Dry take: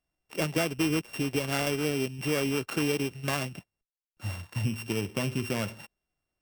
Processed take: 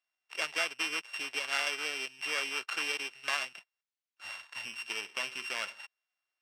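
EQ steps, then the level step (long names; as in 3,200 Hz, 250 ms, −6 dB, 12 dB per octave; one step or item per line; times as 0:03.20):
high-pass filter 1,300 Hz 12 dB per octave
high-frequency loss of the air 53 metres
high-shelf EQ 8,300 Hz −5 dB
+3.5 dB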